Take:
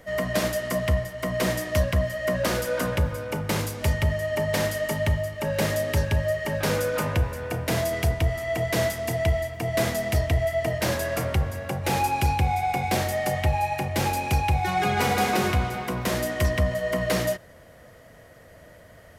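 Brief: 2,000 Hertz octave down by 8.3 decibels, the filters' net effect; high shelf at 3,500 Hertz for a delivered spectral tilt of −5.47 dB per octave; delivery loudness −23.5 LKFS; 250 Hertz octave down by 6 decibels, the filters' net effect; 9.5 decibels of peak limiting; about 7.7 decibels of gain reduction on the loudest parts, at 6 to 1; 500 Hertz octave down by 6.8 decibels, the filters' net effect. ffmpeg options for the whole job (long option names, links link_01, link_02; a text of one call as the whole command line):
ffmpeg -i in.wav -af "equalizer=frequency=250:width_type=o:gain=-7.5,equalizer=frequency=500:width_type=o:gain=-7,equalizer=frequency=2000:width_type=o:gain=-7.5,highshelf=frequency=3500:gain=-7.5,acompressor=threshold=-27dB:ratio=6,volume=13.5dB,alimiter=limit=-15dB:level=0:latency=1" out.wav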